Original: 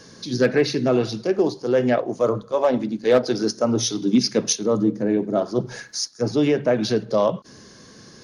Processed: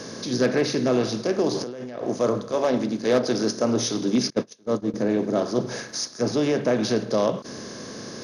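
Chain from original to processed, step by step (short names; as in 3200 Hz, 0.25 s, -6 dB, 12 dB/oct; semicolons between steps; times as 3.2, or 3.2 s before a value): per-bin compression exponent 0.6; 1.51–2.05 negative-ratio compressor -26 dBFS, ratio -1; 4.3–4.94 gate -14 dBFS, range -29 dB; gain -6 dB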